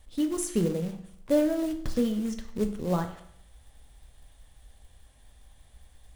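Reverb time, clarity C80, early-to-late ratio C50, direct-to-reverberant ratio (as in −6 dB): 0.65 s, 13.5 dB, 10.5 dB, 6.0 dB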